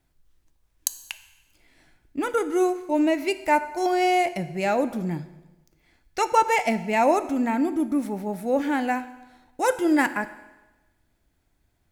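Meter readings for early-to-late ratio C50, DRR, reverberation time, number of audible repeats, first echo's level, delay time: 13.5 dB, 11.0 dB, 1.1 s, no echo, no echo, no echo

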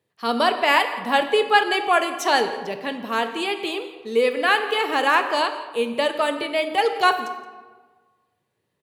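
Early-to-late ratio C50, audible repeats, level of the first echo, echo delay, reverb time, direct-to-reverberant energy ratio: 9.0 dB, 1, -18.5 dB, 171 ms, 1.4 s, 6.5 dB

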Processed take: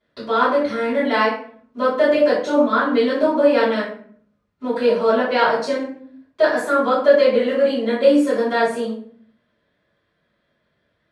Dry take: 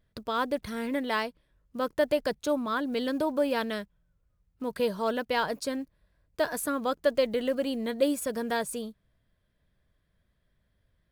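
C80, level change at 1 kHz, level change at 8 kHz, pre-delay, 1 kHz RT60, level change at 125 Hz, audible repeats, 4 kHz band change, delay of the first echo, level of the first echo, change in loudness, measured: 7.5 dB, +12.0 dB, no reading, 3 ms, 0.50 s, no reading, no echo, +7.5 dB, no echo, no echo, +12.0 dB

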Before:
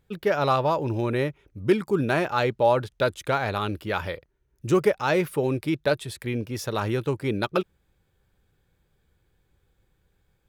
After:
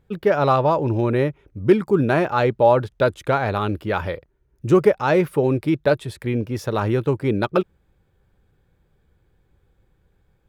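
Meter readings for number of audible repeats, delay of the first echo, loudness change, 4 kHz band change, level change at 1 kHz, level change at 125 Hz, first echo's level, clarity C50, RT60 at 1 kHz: no echo, no echo, +5.0 dB, -1.0 dB, +4.5 dB, +6.0 dB, no echo, no reverb, no reverb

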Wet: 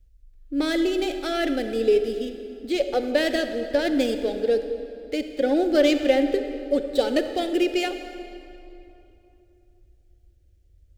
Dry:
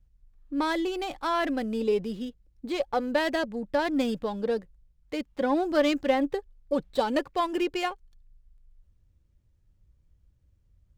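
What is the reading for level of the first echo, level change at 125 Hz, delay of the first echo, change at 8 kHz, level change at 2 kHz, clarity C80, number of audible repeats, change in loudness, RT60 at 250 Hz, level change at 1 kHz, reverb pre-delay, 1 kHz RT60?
no echo, no reading, no echo, +6.5 dB, +3.0 dB, 9.5 dB, no echo, +4.5 dB, 3.0 s, -3.0 dB, 33 ms, 2.8 s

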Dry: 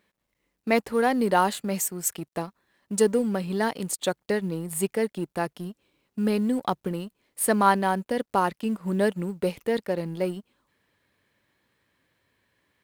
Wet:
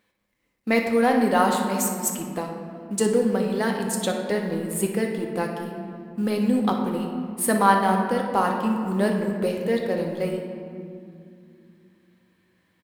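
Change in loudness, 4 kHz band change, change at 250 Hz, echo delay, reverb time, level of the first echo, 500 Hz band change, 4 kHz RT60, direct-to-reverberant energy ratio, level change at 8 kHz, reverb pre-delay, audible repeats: +2.5 dB, +2.0 dB, +4.0 dB, 60 ms, 2.4 s, -11.0 dB, +2.0 dB, 1.3 s, 1.0 dB, +1.5 dB, 4 ms, 1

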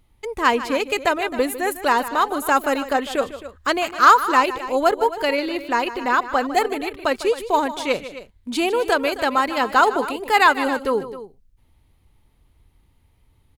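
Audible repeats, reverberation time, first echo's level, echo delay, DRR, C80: 2, no reverb, -14.0 dB, 152 ms, no reverb, no reverb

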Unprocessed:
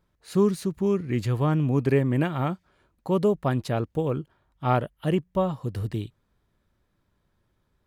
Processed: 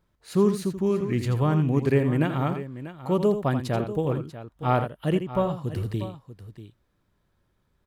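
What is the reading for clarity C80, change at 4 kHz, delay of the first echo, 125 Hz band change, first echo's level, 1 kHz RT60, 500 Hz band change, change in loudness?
no reverb, +0.5 dB, 83 ms, +0.5 dB, -9.5 dB, no reverb, +0.5 dB, +0.5 dB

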